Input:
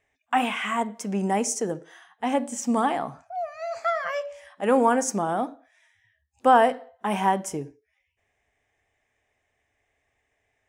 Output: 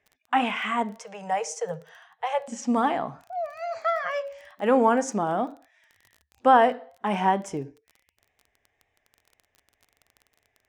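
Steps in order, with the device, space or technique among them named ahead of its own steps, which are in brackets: lo-fi chain (low-pass 5.2 kHz 12 dB/octave; wow and flutter; crackle 22 per s -39 dBFS); 0.99–2.48 s: Chebyshev band-stop 170–450 Hz, order 4

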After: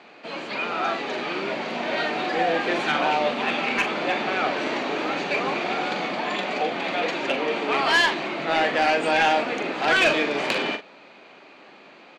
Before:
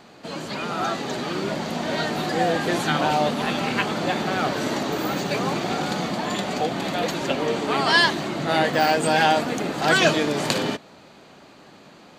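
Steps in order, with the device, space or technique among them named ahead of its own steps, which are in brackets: intercom (band-pass 310–3800 Hz; peaking EQ 2.4 kHz +8 dB 0.45 oct; saturation -12.5 dBFS, distortion -17 dB; doubling 42 ms -9 dB)

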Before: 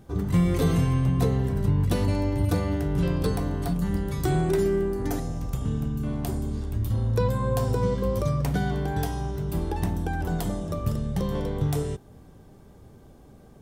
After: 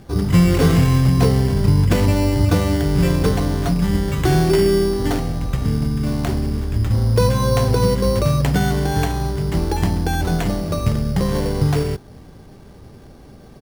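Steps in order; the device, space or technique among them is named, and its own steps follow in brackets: peaking EQ 2.2 kHz +4.5 dB 0.82 oct; crushed at another speed (playback speed 0.8×; sample-and-hold 11×; playback speed 1.25×); trim +8 dB

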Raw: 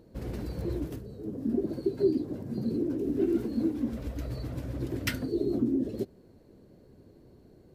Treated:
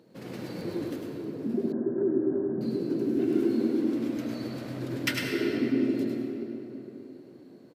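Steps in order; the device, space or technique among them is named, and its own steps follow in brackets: PA in a hall (high-pass 140 Hz 24 dB/octave; peaking EQ 2.8 kHz +6 dB 2.6 oct; delay 103 ms -5.5 dB; reverberation RT60 3.6 s, pre-delay 74 ms, DRR 1 dB); 1.72–2.61 s: elliptic low-pass 1.7 kHz, stop band 40 dB; trim -2 dB

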